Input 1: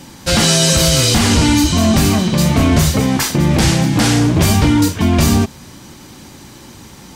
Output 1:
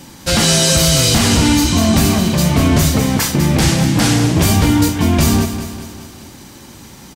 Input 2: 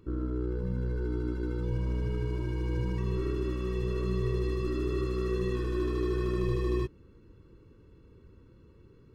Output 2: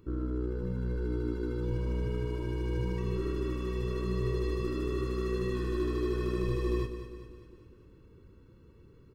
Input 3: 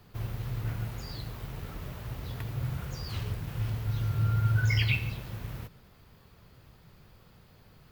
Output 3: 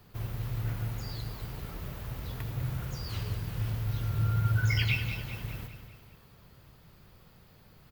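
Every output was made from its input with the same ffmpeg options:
-filter_complex "[0:a]highshelf=f=11000:g=5,asplit=2[s0][s1];[s1]aecho=0:1:199|398|597|796|995|1194:0.316|0.168|0.0888|0.0471|0.025|0.0132[s2];[s0][s2]amix=inputs=2:normalize=0,volume=0.891"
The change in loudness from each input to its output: 0.0 LU, -1.5 LU, -0.5 LU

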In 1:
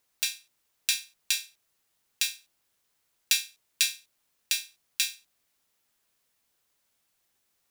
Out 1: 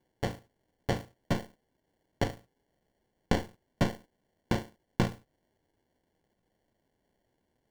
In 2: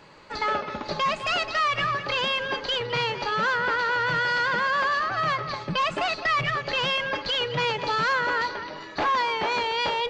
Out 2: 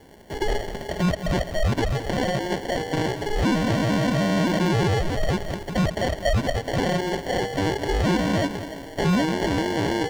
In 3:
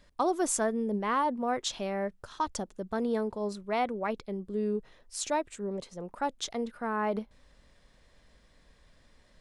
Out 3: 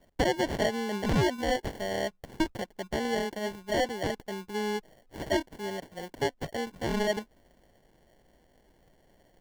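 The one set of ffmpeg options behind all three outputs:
-filter_complex "[0:a]asplit=2[s0][s1];[s1]highpass=f=720:p=1,volume=2.82,asoftclip=type=tanh:threshold=0.891[s2];[s0][s2]amix=inputs=2:normalize=0,lowpass=f=2800:p=1,volume=0.501,acrusher=samples=35:mix=1:aa=0.000001,acrossover=split=7100[s3][s4];[s4]acompressor=threshold=0.00398:ratio=4:attack=1:release=60[s5];[s3][s5]amix=inputs=2:normalize=0"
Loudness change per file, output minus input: -5.5 LU, +0.5 LU, +1.0 LU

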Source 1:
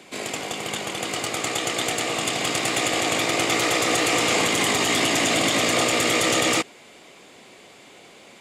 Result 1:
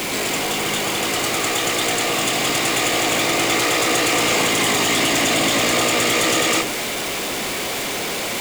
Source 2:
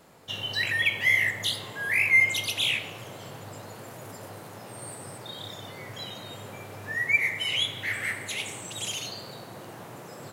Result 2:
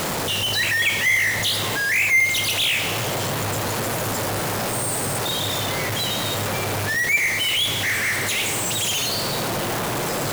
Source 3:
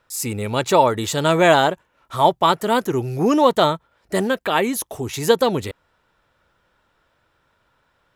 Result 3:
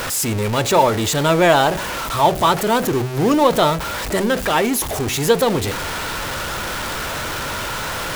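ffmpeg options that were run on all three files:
-af "aeval=exprs='val(0)+0.5*0.126*sgn(val(0))':c=same,bandreject=f=62.89:t=h:w=4,bandreject=f=125.78:t=h:w=4,bandreject=f=188.67:t=h:w=4,bandreject=f=251.56:t=h:w=4,bandreject=f=314.45:t=h:w=4,bandreject=f=377.34:t=h:w=4,bandreject=f=440.23:t=h:w=4,bandreject=f=503.12:t=h:w=4,bandreject=f=566.01:t=h:w=4,bandreject=f=628.9:t=h:w=4,bandreject=f=691.79:t=h:w=4,bandreject=f=754.68:t=h:w=4,bandreject=f=817.57:t=h:w=4,volume=0.891"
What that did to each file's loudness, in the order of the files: +3.5 LU, +4.5 LU, +0.5 LU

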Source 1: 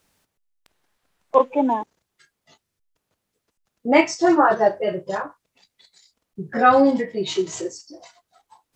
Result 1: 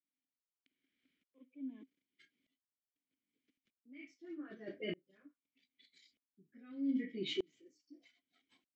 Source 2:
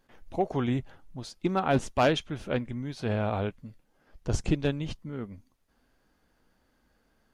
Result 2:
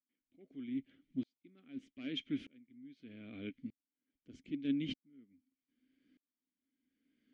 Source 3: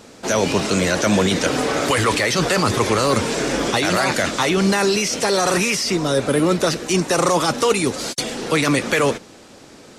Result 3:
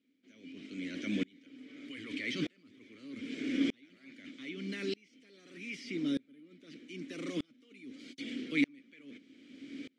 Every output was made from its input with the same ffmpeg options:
-filter_complex "[0:a]areverse,acompressor=threshold=0.0447:ratio=6,areverse,asplit=3[s0][s1][s2];[s0]bandpass=f=270:t=q:w=8,volume=1[s3];[s1]bandpass=f=2290:t=q:w=8,volume=0.501[s4];[s2]bandpass=f=3010:t=q:w=8,volume=0.355[s5];[s3][s4][s5]amix=inputs=3:normalize=0,aeval=exprs='val(0)*pow(10,-34*if(lt(mod(-0.81*n/s,1),2*abs(-0.81)/1000),1-mod(-0.81*n/s,1)/(2*abs(-0.81)/1000),(mod(-0.81*n/s,1)-2*abs(-0.81)/1000)/(1-2*abs(-0.81)/1000))/20)':c=same,volume=3.55"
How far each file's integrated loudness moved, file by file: -22.5 LU, -12.5 LU, -19.5 LU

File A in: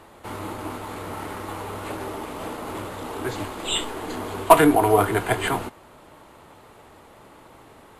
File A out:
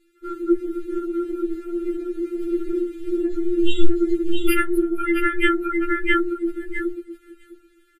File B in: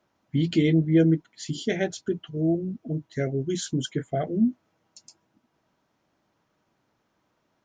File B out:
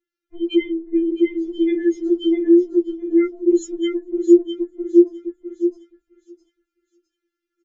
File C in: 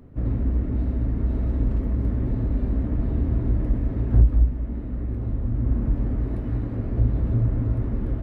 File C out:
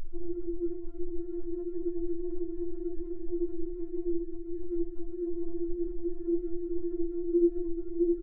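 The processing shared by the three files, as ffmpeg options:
-filter_complex "[0:a]equalizer=f=125:t=o:w=1:g=9,equalizer=f=250:t=o:w=1:g=-8,equalizer=f=500:t=o:w=1:g=-5,equalizer=f=1000:t=o:w=1:g=9,acrossover=split=610[s0][s1];[s0]acontrast=41[s2];[s2][s1]amix=inputs=2:normalize=0,asoftclip=type=tanh:threshold=0.708,adynamicequalizer=threshold=0.00794:dfrequency=1300:dqfactor=2.1:tfrequency=1300:tqfactor=2.1:attack=5:release=100:ratio=0.375:range=3:mode=cutabove:tftype=bell,aecho=1:1:659|1318|1977|2636|3295:0.708|0.276|0.108|0.042|0.0164,afftdn=nr=30:nf=-25,afftfilt=real='re*(1-between(b*sr/4096,470,1200))':imag='im*(1-between(b*sr/4096,470,1200))':win_size=4096:overlap=0.75,acompressor=threshold=0.0562:ratio=8,alimiter=level_in=16.8:limit=0.891:release=50:level=0:latency=1,afftfilt=real='re*4*eq(mod(b,16),0)':imag='im*4*eq(mod(b,16),0)':win_size=2048:overlap=0.75,volume=0.531"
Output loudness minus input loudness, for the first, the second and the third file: +0.5 LU, +7.0 LU, -9.5 LU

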